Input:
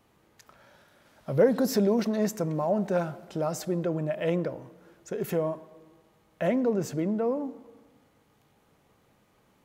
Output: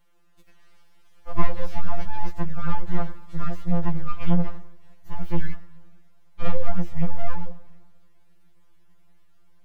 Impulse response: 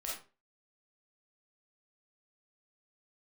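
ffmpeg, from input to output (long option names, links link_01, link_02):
-filter_complex "[0:a]aeval=exprs='abs(val(0))':channel_layout=same,acrossover=split=3800[link_01][link_02];[link_02]acompressor=threshold=-57dB:ratio=4:attack=1:release=60[link_03];[link_01][link_03]amix=inputs=2:normalize=0,asubboost=boost=3:cutoff=240,afftfilt=real='re*2.83*eq(mod(b,8),0)':imag='im*2.83*eq(mod(b,8),0)':win_size=2048:overlap=0.75"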